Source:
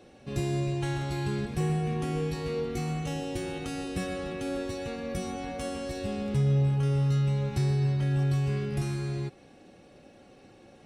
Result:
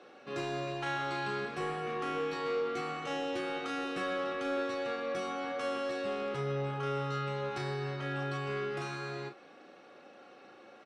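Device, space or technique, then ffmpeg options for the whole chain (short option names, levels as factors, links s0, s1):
intercom: -filter_complex "[0:a]highpass=360,lowpass=4600,equalizer=f=1300:t=o:w=0.56:g=10,asoftclip=type=tanh:threshold=0.0422,asplit=2[s0][s1];[s1]adelay=36,volume=0.447[s2];[s0][s2]amix=inputs=2:normalize=0"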